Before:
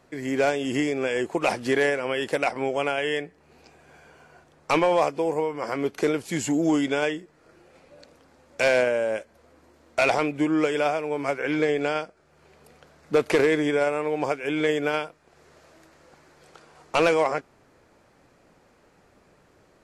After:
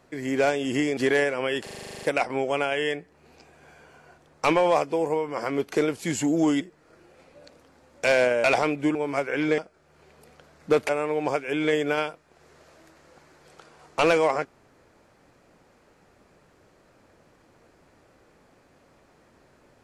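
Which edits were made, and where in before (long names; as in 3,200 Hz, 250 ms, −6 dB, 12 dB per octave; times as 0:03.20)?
0:00.97–0:01.63: remove
0:02.29: stutter 0.04 s, 11 plays
0:06.87–0:07.17: remove
0:09.00–0:10.00: remove
0:10.51–0:11.06: remove
0:11.69–0:12.01: remove
0:13.32–0:13.85: remove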